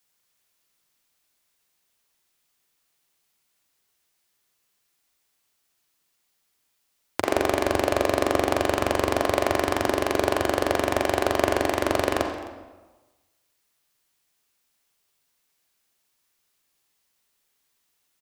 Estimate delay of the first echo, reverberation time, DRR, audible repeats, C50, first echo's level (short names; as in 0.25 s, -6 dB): 0.26 s, 1.2 s, 3.0 dB, 1, 3.5 dB, -19.0 dB